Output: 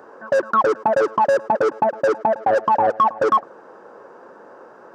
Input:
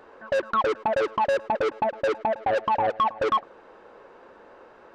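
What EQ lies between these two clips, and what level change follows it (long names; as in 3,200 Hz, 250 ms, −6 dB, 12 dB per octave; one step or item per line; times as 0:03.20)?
high-pass filter 120 Hz 24 dB per octave
flat-topped bell 2,900 Hz −11 dB 1.3 octaves
+6.5 dB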